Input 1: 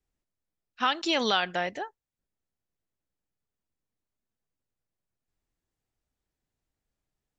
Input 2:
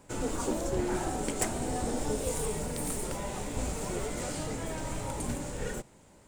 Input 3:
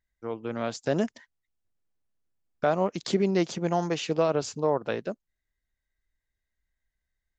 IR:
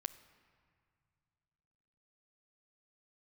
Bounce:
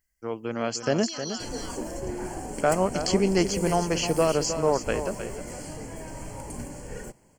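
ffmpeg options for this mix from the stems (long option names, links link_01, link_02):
-filter_complex "[0:a]aexciter=amount=13.6:drive=5.9:freq=4200,volume=-17dB,asplit=2[link_01][link_02];[link_02]volume=-4.5dB[link_03];[1:a]equalizer=frequency=3200:width_type=o:width=0.77:gain=-3.5,bandreject=frequency=1300:width=7.1,acontrast=28,adelay=1300,volume=-7.5dB[link_04];[2:a]highshelf=frequency=4100:gain=10,volume=1.5dB,asplit=2[link_05][link_06];[link_06]volume=-9.5dB[link_07];[link_03][link_07]amix=inputs=2:normalize=0,aecho=0:1:310:1[link_08];[link_01][link_04][link_05][link_08]amix=inputs=4:normalize=0,asuperstop=centerf=3700:order=8:qfactor=4.6"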